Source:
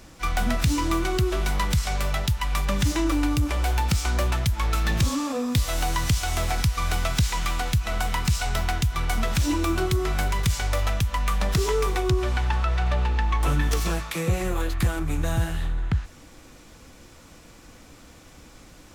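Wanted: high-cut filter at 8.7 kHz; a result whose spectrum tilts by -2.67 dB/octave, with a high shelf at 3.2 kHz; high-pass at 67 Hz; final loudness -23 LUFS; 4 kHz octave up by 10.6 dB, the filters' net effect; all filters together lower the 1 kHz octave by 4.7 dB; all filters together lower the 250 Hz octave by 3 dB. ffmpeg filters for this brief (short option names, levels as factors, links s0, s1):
-af "highpass=67,lowpass=8700,equalizer=f=250:t=o:g=-4,equalizer=f=1000:t=o:g=-7.5,highshelf=f=3200:g=8,equalizer=f=4000:t=o:g=8,volume=1.06"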